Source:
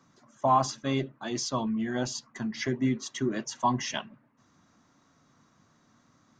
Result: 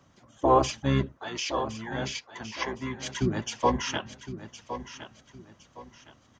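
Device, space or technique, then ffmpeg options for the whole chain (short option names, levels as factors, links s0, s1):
octave pedal: -filter_complex "[0:a]asplit=2[s0][s1];[s1]asetrate=22050,aresample=44100,atempo=2,volume=0.891[s2];[s0][s2]amix=inputs=2:normalize=0,asettb=1/sr,asplit=3[s3][s4][s5];[s3]atrim=end=1.174[s6];[s4]atrim=start=1.17:end=3.03,asetpts=PTS-STARTPTS,afade=t=in:d=0.004:c=qsin,afade=t=out:st=1.856:d=0.004:c=qsin,acrossover=split=380 7100:gain=0.178 1 0.0708[s7][s8][s9];[s7][s8][s9]amix=inputs=3:normalize=0[s10];[s5]atrim=start=3.026[s11];[s6][s10]acrossfade=d=0.004:c1=hsin:c2=qsin[s12];[s12][s11]acrossfade=d=0.004:c1=qsin:c2=hsin,aecho=1:1:1063|2126|3189:0.251|0.0779|0.0241"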